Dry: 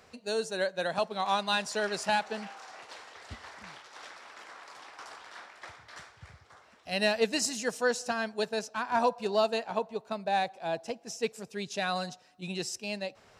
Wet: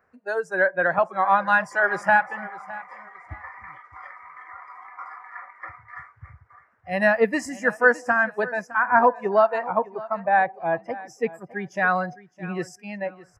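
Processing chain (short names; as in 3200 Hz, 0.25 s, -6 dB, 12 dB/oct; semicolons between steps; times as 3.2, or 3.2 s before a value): spectral noise reduction 18 dB; resonant high shelf 2400 Hz -13.5 dB, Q 3; feedback echo 0.611 s, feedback 24%, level -18.5 dB; gain +7.5 dB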